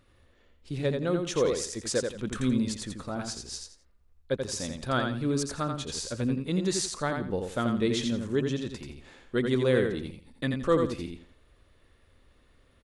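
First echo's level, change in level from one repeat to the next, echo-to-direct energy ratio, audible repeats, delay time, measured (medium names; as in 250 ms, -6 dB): -5.0 dB, -12.0 dB, -4.5 dB, 3, 85 ms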